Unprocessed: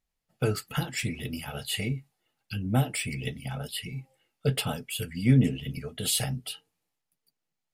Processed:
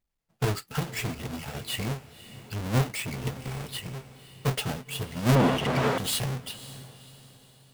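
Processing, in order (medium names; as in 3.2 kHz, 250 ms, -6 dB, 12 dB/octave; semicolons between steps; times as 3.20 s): square wave that keeps the level; on a send: echo that smears into a reverb 545 ms, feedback 40%, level -15 dB; 5.35–5.98 s: on the sum: overdrive pedal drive 27 dB, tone 1.4 kHz, clips at -3.5 dBFS; trim -5 dB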